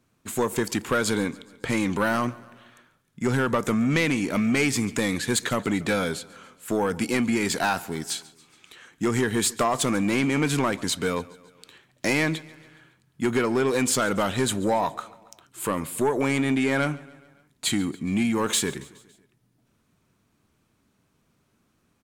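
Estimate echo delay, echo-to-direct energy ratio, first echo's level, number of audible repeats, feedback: 140 ms, −20.0 dB, −21.5 dB, 3, 57%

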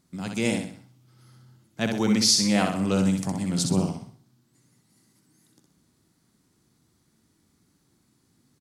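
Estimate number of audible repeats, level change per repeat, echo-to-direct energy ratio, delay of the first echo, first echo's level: 4, −8.0 dB, −4.0 dB, 63 ms, −5.0 dB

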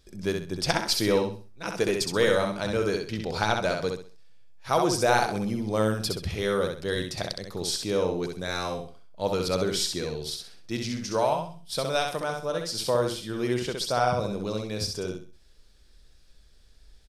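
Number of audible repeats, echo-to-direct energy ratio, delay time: 3, −4.0 dB, 65 ms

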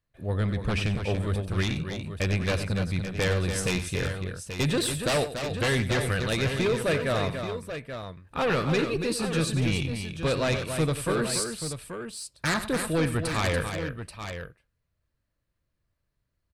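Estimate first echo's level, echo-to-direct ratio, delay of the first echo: −12.5 dB, −4.5 dB, 92 ms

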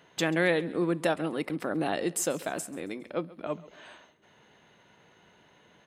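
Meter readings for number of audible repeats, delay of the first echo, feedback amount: 2, 136 ms, 41%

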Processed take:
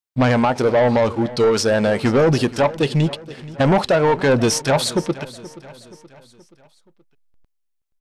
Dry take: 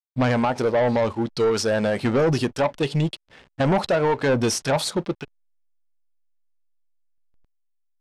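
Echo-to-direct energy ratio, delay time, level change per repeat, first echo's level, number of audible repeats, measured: −17.0 dB, 476 ms, −6.0 dB, −18.0 dB, 3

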